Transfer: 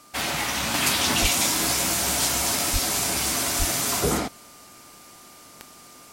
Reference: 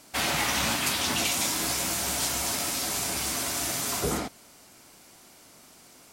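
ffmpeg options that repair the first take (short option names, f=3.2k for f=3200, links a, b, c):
-filter_complex "[0:a]adeclick=t=4,bandreject=f=1.2k:w=30,asplit=3[a][b][c];[a]afade=t=out:st=1.21:d=0.02[d];[b]highpass=f=140:w=0.5412,highpass=f=140:w=1.3066,afade=t=in:st=1.21:d=0.02,afade=t=out:st=1.33:d=0.02[e];[c]afade=t=in:st=1.33:d=0.02[f];[d][e][f]amix=inputs=3:normalize=0,asplit=3[g][h][i];[g]afade=t=out:st=2.72:d=0.02[j];[h]highpass=f=140:w=0.5412,highpass=f=140:w=1.3066,afade=t=in:st=2.72:d=0.02,afade=t=out:st=2.84:d=0.02[k];[i]afade=t=in:st=2.84:d=0.02[l];[j][k][l]amix=inputs=3:normalize=0,asplit=3[m][n][o];[m]afade=t=out:st=3.58:d=0.02[p];[n]highpass=f=140:w=0.5412,highpass=f=140:w=1.3066,afade=t=in:st=3.58:d=0.02,afade=t=out:st=3.7:d=0.02[q];[o]afade=t=in:st=3.7:d=0.02[r];[p][q][r]amix=inputs=3:normalize=0,asetnsamples=n=441:p=0,asendcmd='0.74 volume volume -5dB',volume=0dB"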